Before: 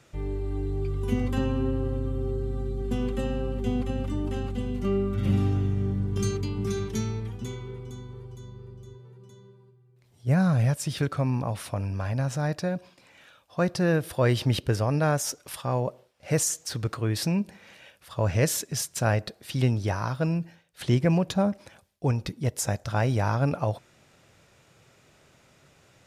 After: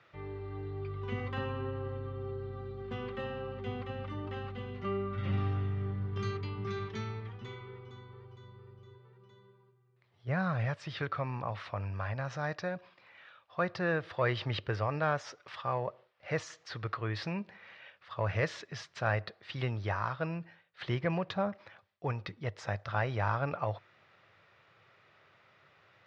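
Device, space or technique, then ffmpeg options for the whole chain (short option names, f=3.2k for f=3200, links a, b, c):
overdrive pedal into a guitar cabinet: -filter_complex "[0:a]asettb=1/sr,asplit=3[a][b][c];[a]atrim=end=12.254[d];[b]atrim=start=12.25:end=12.75,asetpts=PTS-STARTPTS,afade=t=in:d=0.004:c=qsin,afade=t=out:st=0.496:d=0.004:c=qsin,equalizer=f=6.2k:t=o:w=0.52:g=8[e];[c]atrim=start=12.746[f];[d][e]acrossfade=d=0.004:c1=hsin:c2=qsin[g];[g][f]acrossfade=d=0.004:c1=qsin:c2=hsin,asplit=2[h][i];[i]highpass=f=720:p=1,volume=9dB,asoftclip=type=tanh:threshold=-10dB[j];[h][j]amix=inputs=2:normalize=0,lowpass=f=3.2k:p=1,volume=-6dB,highpass=85,equalizer=f=100:t=q:w=4:g=8,equalizer=f=260:t=q:w=4:g=-7,equalizer=f=1.2k:t=q:w=4:g=6,equalizer=f=1.9k:t=q:w=4:g=5,lowpass=f=4.5k:w=0.5412,lowpass=f=4.5k:w=1.3066,volume=-7.5dB"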